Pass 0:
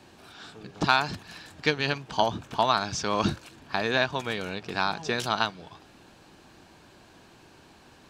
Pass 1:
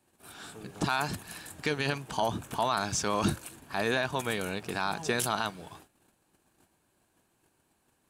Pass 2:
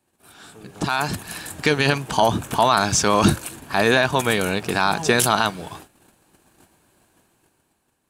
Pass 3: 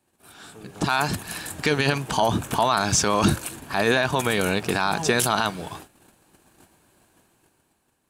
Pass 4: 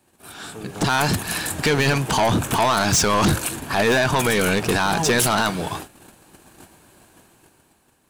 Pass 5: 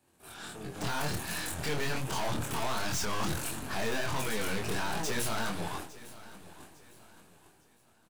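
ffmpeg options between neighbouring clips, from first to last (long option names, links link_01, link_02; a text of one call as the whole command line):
ffmpeg -i in.wav -af "agate=range=-19dB:threshold=-50dB:ratio=16:detection=peak,highshelf=frequency=7100:width_type=q:width=1.5:gain=12.5,alimiter=limit=-16.5dB:level=0:latency=1:release=17" out.wav
ffmpeg -i in.wav -af "dynaudnorm=framelen=290:gausssize=7:maxgain=12dB" out.wav
ffmpeg -i in.wav -af "alimiter=limit=-9dB:level=0:latency=1:release=49" out.wav
ffmpeg -i in.wav -af "asoftclip=type=tanh:threshold=-22.5dB,volume=8.5dB" out.wav
ffmpeg -i in.wav -af "aeval=exprs='(tanh(22.4*val(0)+0.6)-tanh(0.6))/22.4':channel_layout=same,flanger=delay=22.5:depth=4.4:speed=1.4,aecho=1:1:856|1712|2568:0.126|0.0441|0.0154,volume=-2dB" out.wav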